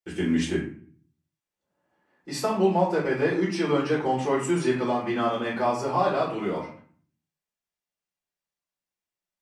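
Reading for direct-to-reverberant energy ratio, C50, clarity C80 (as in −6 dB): −7.5 dB, 6.0 dB, 10.0 dB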